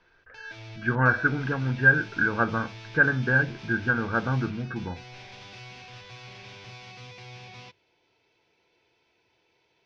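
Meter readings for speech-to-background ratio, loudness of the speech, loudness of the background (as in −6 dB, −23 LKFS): 19.5 dB, −24.5 LKFS, −44.0 LKFS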